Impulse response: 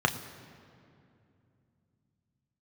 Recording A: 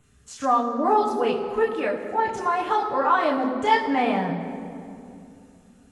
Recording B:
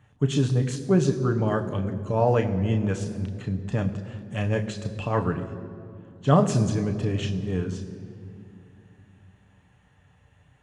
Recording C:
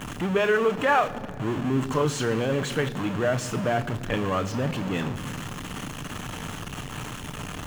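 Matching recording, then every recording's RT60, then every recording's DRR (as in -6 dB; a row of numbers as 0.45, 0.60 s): B; 2.6, 2.6, 2.6 s; -3.5, 5.0, 10.0 dB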